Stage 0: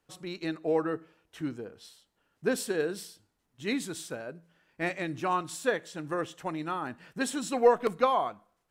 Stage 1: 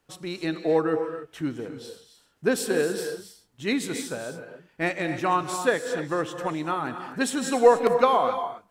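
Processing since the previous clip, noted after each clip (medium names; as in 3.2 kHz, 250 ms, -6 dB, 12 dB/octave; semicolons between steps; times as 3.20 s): gated-style reverb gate 310 ms rising, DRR 8 dB; trim +5 dB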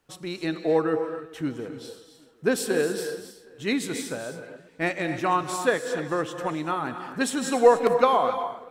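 tape echo 383 ms, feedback 48%, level -21 dB, low-pass 4.1 kHz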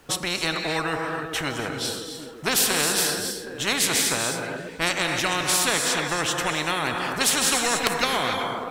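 spectrum-flattening compressor 4:1; trim +4 dB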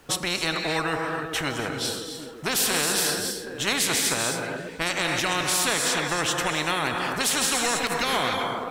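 peak limiter -13 dBFS, peak gain reduction 10.5 dB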